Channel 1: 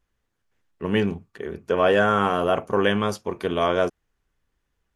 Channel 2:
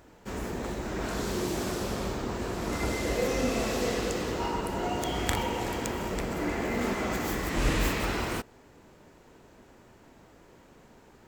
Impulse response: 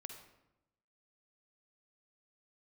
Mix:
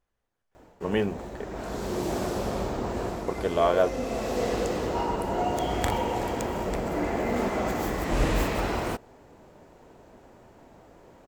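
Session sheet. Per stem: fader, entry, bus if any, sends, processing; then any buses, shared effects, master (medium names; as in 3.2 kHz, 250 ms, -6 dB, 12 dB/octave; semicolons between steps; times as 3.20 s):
-6.5 dB, 0.00 s, muted 1.45–3.28 s, no send, none
-2.5 dB, 0.55 s, no send, bass shelf 350 Hz +4.5 dB; auto duck -7 dB, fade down 0.20 s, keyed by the first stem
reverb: none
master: peaking EQ 680 Hz +8 dB 1.3 oct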